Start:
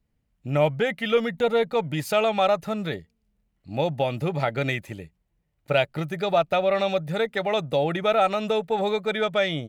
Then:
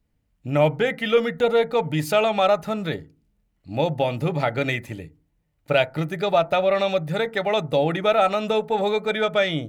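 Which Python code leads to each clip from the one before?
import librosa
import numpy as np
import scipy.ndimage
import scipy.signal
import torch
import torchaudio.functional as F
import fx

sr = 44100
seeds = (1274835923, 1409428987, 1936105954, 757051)

y = fx.rev_fdn(x, sr, rt60_s=0.32, lf_ratio=1.55, hf_ratio=0.3, size_ms=20.0, drr_db=13.5)
y = y * 10.0 ** (2.0 / 20.0)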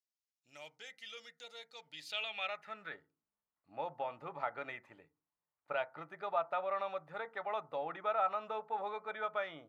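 y = fx.filter_sweep_bandpass(x, sr, from_hz=5700.0, to_hz=1100.0, start_s=1.71, end_s=3.13, q=2.7)
y = y * 10.0 ** (-7.0 / 20.0)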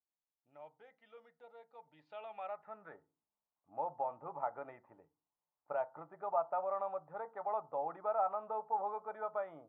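y = fx.lowpass_res(x, sr, hz=890.0, q=2.1)
y = y * 10.0 ** (-3.5 / 20.0)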